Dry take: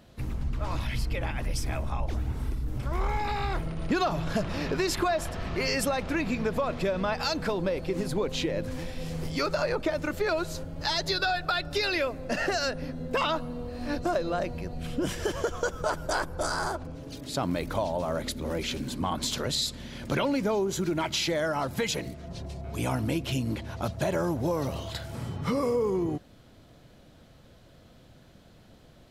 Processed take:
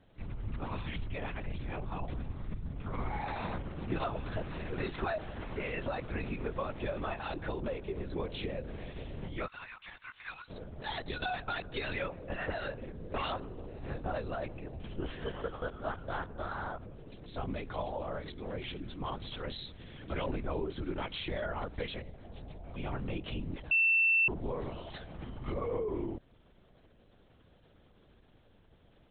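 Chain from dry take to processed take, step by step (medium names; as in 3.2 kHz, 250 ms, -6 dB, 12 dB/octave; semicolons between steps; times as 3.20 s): 9.46–10.50 s: Bessel high-pass 1.6 kHz, order 8; LPC vocoder at 8 kHz whisper; 23.71–24.28 s: bleep 2.68 kHz -15 dBFS; trim -8 dB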